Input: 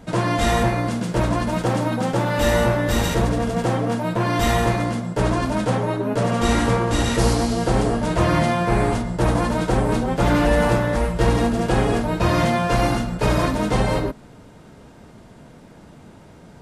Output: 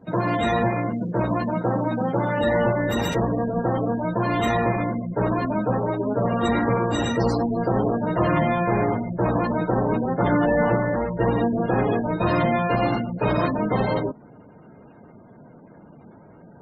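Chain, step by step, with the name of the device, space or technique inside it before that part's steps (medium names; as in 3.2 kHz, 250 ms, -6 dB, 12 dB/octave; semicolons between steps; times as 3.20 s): noise-suppressed video call (high-pass 120 Hz 12 dB/octave; spectral gate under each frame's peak -20 dB strong; trim -1 dB; Opus 24 kbps 48 kHz)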